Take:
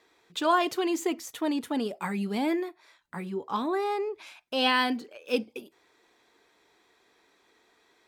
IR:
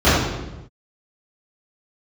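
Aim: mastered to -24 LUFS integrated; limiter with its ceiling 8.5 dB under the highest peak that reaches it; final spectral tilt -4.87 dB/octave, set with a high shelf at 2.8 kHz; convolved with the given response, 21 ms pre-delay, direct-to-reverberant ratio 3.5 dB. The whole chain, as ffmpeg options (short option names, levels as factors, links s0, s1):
-filter_complex "[0:a]highshelf=f=2800:g=-7,alimiter=limit=0.0794:level=0:latency=1,asplit=2[s0][s1];[1:a]atrim=start_sample=2205,adelay=21[s2];[s1][s2]afir=irnorm=-1:irlink=0,volume=0.0316[s3];[s0][s3]amix=inputs=2:normalize=0,volume=1.78"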